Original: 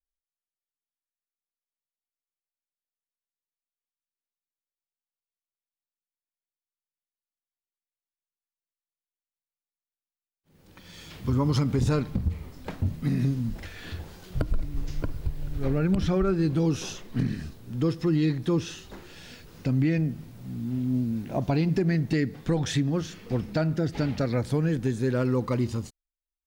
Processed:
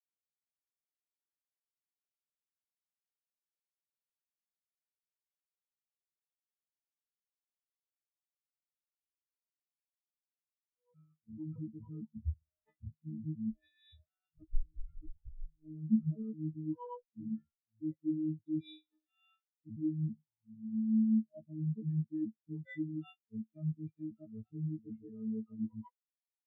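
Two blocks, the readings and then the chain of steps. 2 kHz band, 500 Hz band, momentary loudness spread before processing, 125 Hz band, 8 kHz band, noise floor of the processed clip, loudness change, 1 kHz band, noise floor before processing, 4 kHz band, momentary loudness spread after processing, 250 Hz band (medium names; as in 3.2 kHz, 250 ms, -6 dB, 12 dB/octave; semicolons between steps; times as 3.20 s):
under -20 dB, -22.5 dB, 15 LU, -15.0 dB, under -35 dB, under -85 dBFS, -11.0 dB, -19.5 dB, under -85 dBFS, under -20 dB, 19 LU, -9.0 dB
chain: partials quantised in pitch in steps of 6 st; feedback comb 320 Hz, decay 0.29 s, harmonics odd, mix 60%; decimation with a swept rate 9×, swing 60% 0.2 Hz; dynamic bell 220 Hz, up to +6 dB, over -42 dBFS, Q 1.4; reverse; compression 6:1, threshold -36 dBFS, peak gain reduction 13 dB; reverse; spectral contrast expander 4:1; trim +6.5 dB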